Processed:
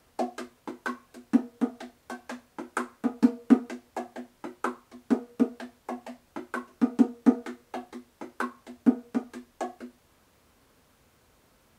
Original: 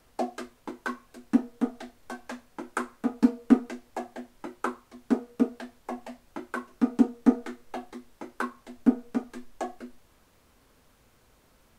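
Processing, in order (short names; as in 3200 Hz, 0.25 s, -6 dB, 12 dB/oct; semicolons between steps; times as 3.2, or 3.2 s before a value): HPF 53 Hz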